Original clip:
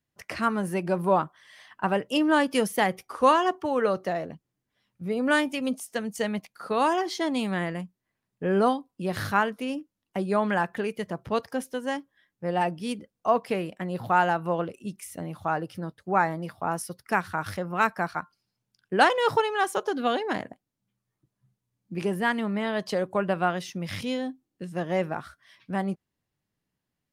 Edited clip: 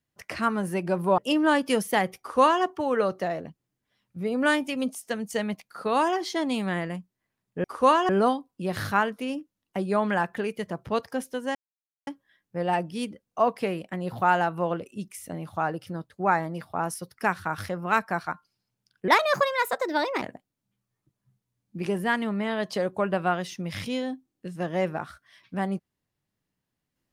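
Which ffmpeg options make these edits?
-filter_complex "[0:a]asplit=7[a][b][c][d][e][f][g];[a]atrim=end=1.182[h];[b]atrim=start=2.028:end=8.492[i];[c]atrim=start=3.038:end=3.492[j];[d]atrim=start=8.488:end=11.95,asetpts=PTS-STARTPTS,afade=t=out:st=3.458:d=0.004:c=hsin,apad=pad_dur=0.52[k];[e]atrim=start=11.95:end=18.964,asetpts=PTS-STARTPTS,afade=t=in:d=0.004:c=hsin[l];[f]atrim=start=18.96:end=20.38,asetpts=PTS-STARTPTS,asetrate=55125,aresample=44100[m];[g]atrim=start=20.376[n];[h][i]acrossfade=d=0.004:c1=hsin:c2=hsin[o];[o][j]acrossfade=d=0.004:c1=hsin:c2=hsin[p];[k][l]concat=n=2:v=0:a=1[q];[p][q]acrossfade=d=0.004:c1=hsin:c2=hsin[r];[r][m]acrossfade=d=0.004:c1=hsin:c2=hsin[s];[s][n]acrossfade=d=0.004:c1=hsin:c2=hsin"

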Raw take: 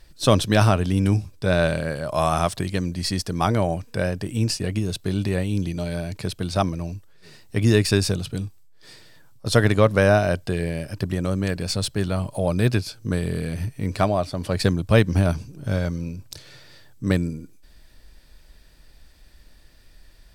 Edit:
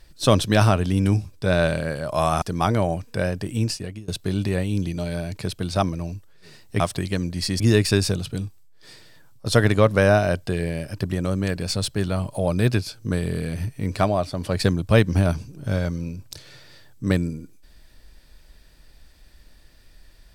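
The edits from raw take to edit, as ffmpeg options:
-filter_complex "[0:a]asplit=5[a][b][c][d][e];[a]atrim=end=2.422[f];[b]atrim=start=3.218:end=4.88,asetpts=PTS-STARTPTS,afade=t=out:st=1.162:d=0.5:silence=0.0630957[g];[c]atrim=start=4.88:end=7.602,asetpts=PTS-STARTPTS,afade=t=in:d=0.004:c=hsin:silence=0.0630957[h];[d]atrim=start=2.418:end=3.222[i];[e]atrim=start=7.598[j];[g][h]concat=n=2:v=0:a=1[k];[f][k]acrossfade=d=0.004:c1=hsin:c2=hsin[l];[l][i]acrossfade=d=0.004:c1=hsin:c2=hsin[m];[m][j]acrossfade=d=0.004:c1=hsin:c2=hsin"

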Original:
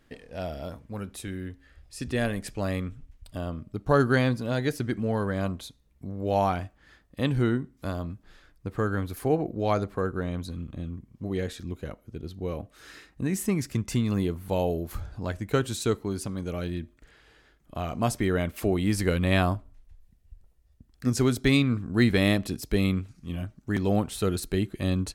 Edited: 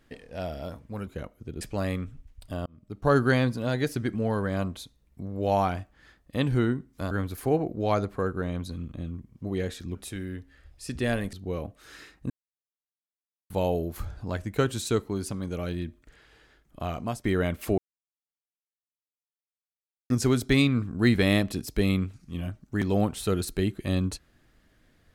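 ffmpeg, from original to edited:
-filter_complex "[0:a]asplit=12[a][b][c][d][e][f][g][h][i][j][k][l];[a]atrim=end=1.072[m];[b]atrim=start=11.738:end=12.282[n];[c]atrim=start=2.448:end=3.5,asetpts=PTS-STARTPTS,afade=t=out:st=1.048:d=0.004:c=hsin[o];[d]atrim=start=3.5:end=7.952,asetpts=PTS-STARTPTS,afade=t=in:d=0.47[p];[e]atrim=start=8.898:end=11.742[q];[f]atrim=start=1.068:end=2.452[r];[g]atrim=start=12.278:end=13.25,asetpts=PTS-STARTPTS,afade=t=out:st=0.968:d=0.004:c=hsin[s];[h]atrim=start=13.25:end=14.45,asetpts=PTS-STARTPTS,volume=0[t];[i]atrim=start=14.45:end=18.19,asetpts=PTS-STARTPTS,afade=t=in:d=0.004:c=hsin,afade=t=out:st=3.41:d=0.33:silence=0.149624[u];[j]atrim=start=18.19:end=18.73,asetpts=PTS-STARTPTS,afade=t=in:d=0.004:c=hsin:silence=0.149624,afade=t=out:st=0.536:d=0.004:c=hsin[v];[k]atrim=start=18.73:end=21.05,asetpts=PTS-STARTPTS,volume=0[w];[l]atrim=start=21.05,asetpts=PTS-STARTPTS,afade=t=in:d=0.004:c=hsin[x];[m][n]acrossfade=d=0.004:c1=hsin:c2=hsin[y];[o][p]concat=n=2:v=0:a=1[z];[y][z]acrossfade=d=0.004:c1=hsin:c2=hsin[aa];[aa][q]acrossfade=d=0.004:c1=hsin:c2=hsin[ab];[ab][r]acrossfade=d=0.004:c1=hsin:c2=hsin[ac];[s][t][u][v][w][x]concat=n=6:v=0:a=1[ad];[ac][ad]acrossfade=d=0.004:c1=hsin:c2=hsin"

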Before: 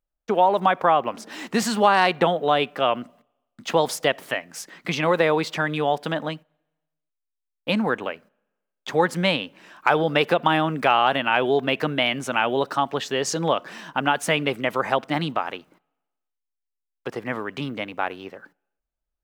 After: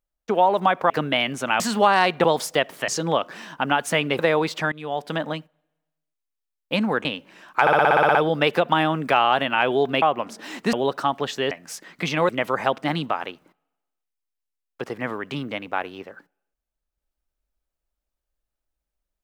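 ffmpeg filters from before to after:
-filter_complex "[0:a]asplit=21[a][b][c][d][e][f][g][h][i][j][k][l][m][n][o][p][q][r][s][t][u];[a]atrim=end=0.902[v];[b]atrim=start=11.758:end=12.462[w];[c]atrim=start=1.608:end=2.252[x];[d]atrim=start=3.728:end=4.372[y];[e]atrim=start=13.238:end=14.552[z];[f]atrim=start=5.148:end=5.68,asetpts=PTS-STARTPTS,afade=t=out:st=0.528:d=0.004:c=hsin:silence=0.11885[aa];[g]atrim=start=5.68:end=8.012,asetpts=PTS-STARTPTS,afade=t=in:d=0.45:silence=0.11885[ab];[h]atrim=start=9.328:end=9.952[ac];[i]atrim=start=9.888:end=9.952[ad];[j]atrim=start=9.888:end=9.952[ae];[k]atrim=start=9.888:end=9.952[af];[l]atrim=start=9.888:end=9.952[ag];[m]atrim=start=9.888:end=9.952[ah];[n]atrim=start=9.888:end=9.952[ai];[o]atrim=start=9.888:end=9.952[aj];[p]atrim=start=9.888:end=9.952[ak];[q]atrim=start=9.888:end=11.762[al];[r]atrim=start=0.898:end=1.612[am];[s]atrim=start=12.458:end=13.242[an];[t]atrim=start=4.368:end=5.152[ao];[u]atrim=start=14.548[ap];[v][w]acrossfade=d=0.004:c1=hsin:c2=hsin[aq];[aq][x]acrossfade=d=0.004:c1=hsin:c2=hsin[ar];[ar][y]acrossfade=d=0.004:c1=hsin:c2=hsin[as];[as][z]acrossfade=d=0.004:c1=hsin:c2=hsin[at];[aa][ab]concat=n=2:v=0:a=1[au];[at][au]acrossfade=d=0.004:c1=hsin:c2=hsin[av];[av][ac]acrossfade=d=0.004:c1=hsin:c2=hsin[aw];[aw][ad]acrossfade=d=0.004:c1=hsin:c2=hsin[ax];[ax][ae]acrossfade=d=0.004:c1=hsin:c2=hsin[ay];[ay][af]acrossfade=d=0.004:c1=hsin:c2=hsin[az];[az][ag]acrossfade=d=0.004:c1=hsin:c2=hsin[ba];[ba][ah]acrossfade=d=0.004:c1=hsin:c2=hsin[bb];[bb][ai]acrossfade=d=0.004:c1=hsin:c2=hsin[bc];[bc][aj]acrossfade=d=0.004:c1=hsin:c2=hsin[bd];[bd][ak]acrossfade=d=0.004:c1=hsin:c2=hsin[be];[be][al]acrossfade=d=0.004:c1=hsin:c2=hsin[bf];[bf][am]acrossfade=d=0.004:c1=hsin:c2=hsin[bg];[bg][an]acrossfade=d=0.004:c1=hsin:c2=hsin[bh];[bh][ao]acrossfade=d=0.004:c1=hsin:c2=hsin[bi];[bi][ap]acrossfade=d=0.004:c1=hsin:c2=hsin"

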